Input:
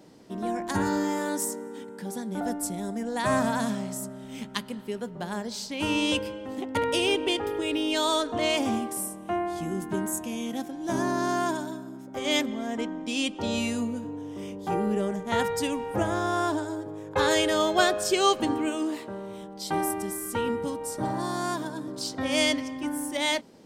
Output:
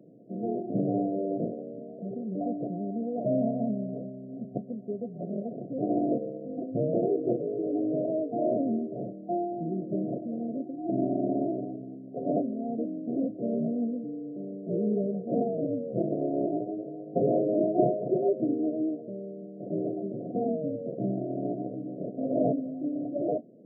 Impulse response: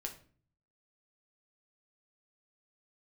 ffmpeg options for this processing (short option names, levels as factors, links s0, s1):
-af "bandreject=f=387.1:t=h:w=4,bandreject=f=774.2:t=h:w=4,bandreject=f=1161.3:t=h:w=4,bandreject=f=1548.4:t=h:w=4,bandreject=f=1935.5:t=h:w=4,bandreject=f=2322.6:t=h:w=4,bandreject=f=2709.7:t=h:w=4,bandreject=f=3096.8:t=h:w=4,bandreject=f=3483.9:t=h:w=4,bandreject=f=3871:t=h:w=4,bandreject=f=4258.1:t=h:w=4,bandreject=f=4645.2:t=h:w=4,bandreject=f=5032.3:t=h:w=4,bandreject=f=5419.4:t=h:w=4,bandreject=f=5806.5:t=h:w=4,bandreject=f=6193.6:t=h:w=4,bandreject=f=6580.7:t=h:w=4,bandreject=f=6967.8:t=h:w=4,bandreject=f=7354.9:t=h:w=4,bandreject=f=7742:t=h:w=4,bandreject=f=8129.1:t=h:w=4,bandreject=f=8516.2:t=h:w=4,bandreject=f=8903.3:t=h:w=4,bandreject=f=9290.4:t=h:w=4,bandreject=f=9677.5:t=h:w=4,bandreject=f=10064.6:t=h:w=4,bandreject=f=10451.7:t=h:w=4,bandreject=f=10838.8:t=h:w=4,bandreject=f=11225.9:t=h:w=4,bandreject=f=11613:t=h:w=4,bandreject=f=12000.1:t=h:w=4,acrusher=samples=30:mix=1:aa=0.000001:lfo=1:lforange=30:lforate=0.2,afftfilt=real='re*between(b*sr/4096,110,730)':imag='im*between(b*sr/4096,110,730)':win_size=4096:overlap=0.75"